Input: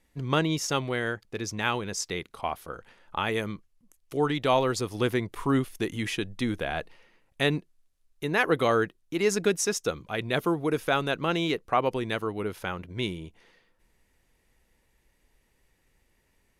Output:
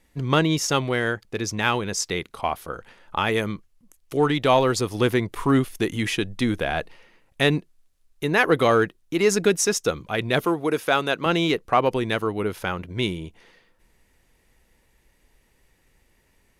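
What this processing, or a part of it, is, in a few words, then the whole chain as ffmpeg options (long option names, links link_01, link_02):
parallel distortion: -filter_complex "[0:a]asplit=2[link_01][link_02];[link_02]asoftclip=type=hard:threshold=-22.5dB,volume=-13dB[link_03];[link_01][link_03]amix=inputs=2:normalize=0,asettb=1/sr,asplit=3[link_04][link_05][link_06];[link_04]atrim=end=10.454[link_07];[link_05]atrim=start=10.45:end=11.26,asetpts=PTS-STARTPTS,afade=type=in:duration=0.004:curve=qsin,afade=type=out:start_time=0.806:duration=0.004:curve=qsin,highpass=frequency=290:poles=1[link_08];[link_06]atrim=start=11.256[link_09];[link_07][link_08]acrossfade=duration=0.004:curve1=hsin:curve2=qsin[link_10];[link_10][link_09]acrossfade=duration=0.004:curve1=qsin:curve2=hsin,volume=4dB"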